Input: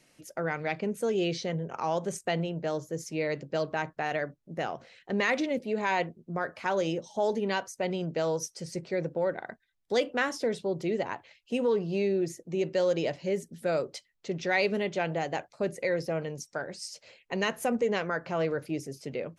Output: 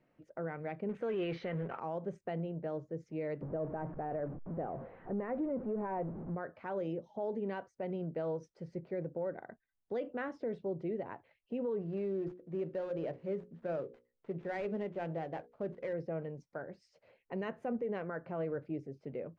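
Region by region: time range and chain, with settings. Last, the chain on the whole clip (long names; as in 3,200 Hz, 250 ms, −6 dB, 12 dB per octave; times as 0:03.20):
0:00.89–0:01.79: mu-law and A-law mismatch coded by mu + de-essing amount 95% + parametric band 2,200 Hz +14.5 dB 2.7 octaves
0:03.41–0:06.35: converter with a step at zero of −32 dBFS + low-pass filter 1,000 Hz
0:11.81–0:15.93: gap after every zero crossing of 0.12 ms + mains-hum notches 60/120/180/240/300/360/420/480/540 Hz
whole clip: low-pass filter 1,300 Hz 12 dB per octave; dynamic equaliser 1,000 Hz, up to −4 dB, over −46 dBFS, Q 1.3; brickwall limiter −23.5 dBFS; level −5.5 dB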